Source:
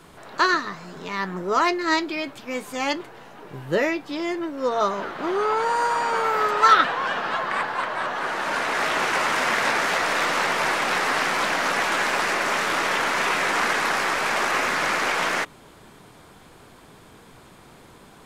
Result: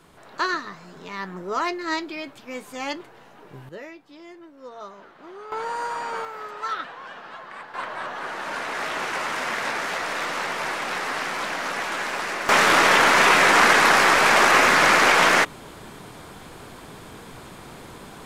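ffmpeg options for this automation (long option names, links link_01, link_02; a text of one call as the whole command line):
ffmpeg -i in.wav -af "asetnsamples=nb_out_samples=441:pad=0,asendcmd='3.69 volume volume -17dB;5.52 volume volume -6.5dB;6.25 volume volume -14dB;7.74 volume volume -5dB;12.49 volume volume 7dB',volume=-5dB" out.wav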